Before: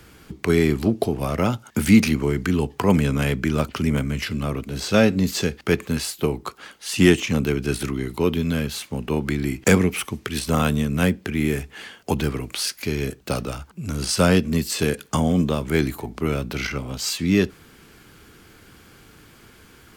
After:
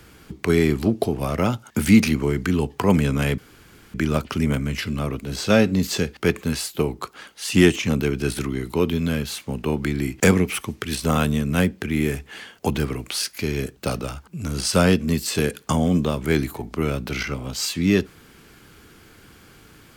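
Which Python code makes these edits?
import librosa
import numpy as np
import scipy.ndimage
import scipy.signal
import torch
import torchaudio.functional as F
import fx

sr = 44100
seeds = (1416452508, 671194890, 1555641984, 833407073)

y = fx.edit(x, sr, fx.insert_room_tone(at_s=3.38, length_s=0.56), tone=tone)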